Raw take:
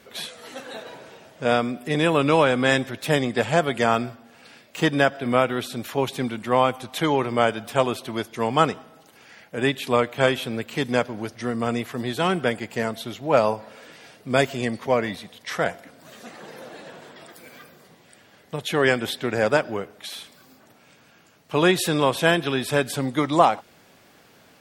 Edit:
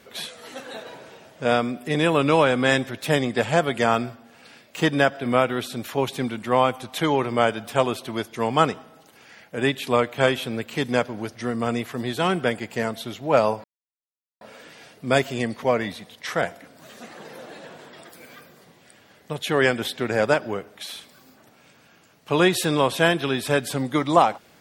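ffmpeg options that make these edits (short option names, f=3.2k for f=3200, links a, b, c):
-filter_complex "[0:a]asplit=2[a][b];[a]atrim=end=13.64,asetpts=PTS-STARTPTS,afade=t=out:st=13.636:d=0.004:c=hsin,apad=pad_dur=0.77[c];[b]atrim=start=13.64,asetpts=PTS-STARTPTS,afade=t=in:d=0.004:c=hsin[d];[c][d]concat=n=2:v=0:a=1"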